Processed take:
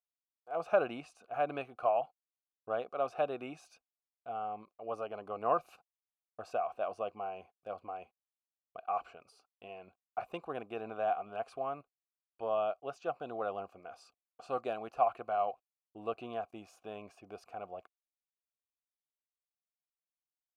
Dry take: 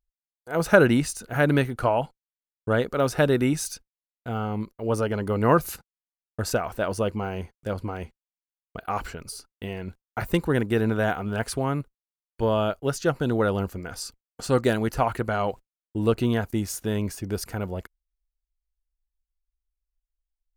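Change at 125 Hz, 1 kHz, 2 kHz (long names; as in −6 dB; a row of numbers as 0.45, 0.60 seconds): −29.5, −5.5, −18.0 decibels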